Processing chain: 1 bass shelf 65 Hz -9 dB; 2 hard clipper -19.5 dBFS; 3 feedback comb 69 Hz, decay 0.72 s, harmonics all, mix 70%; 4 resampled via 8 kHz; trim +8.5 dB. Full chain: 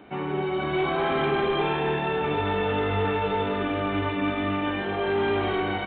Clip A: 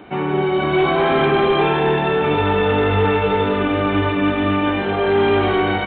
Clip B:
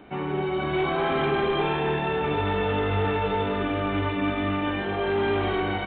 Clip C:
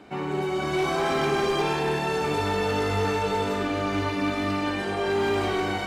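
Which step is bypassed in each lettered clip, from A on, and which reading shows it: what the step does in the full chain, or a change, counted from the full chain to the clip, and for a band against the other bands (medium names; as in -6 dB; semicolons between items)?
3, crest factor change -2.5 dB; 1, 125 Hz band +2.0 dB; 4, 4 kHz band +1.5 dB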